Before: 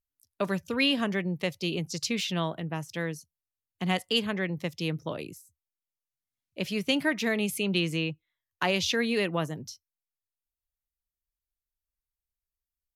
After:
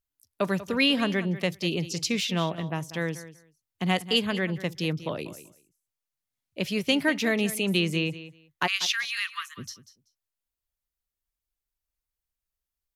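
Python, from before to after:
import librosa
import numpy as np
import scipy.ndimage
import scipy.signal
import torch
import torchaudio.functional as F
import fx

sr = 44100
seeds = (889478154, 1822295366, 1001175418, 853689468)

y = fx.steep_highpass(x, sr, hz=1100.0, slope=96, at=(8.66, 9.57), fade=0.02)
y = fx.echo_feedback(y, sr, ms=191, feedback_pct=16, wet_db=-15)
y = F.gain(torch.from_numpy(y), 2.5).numpy()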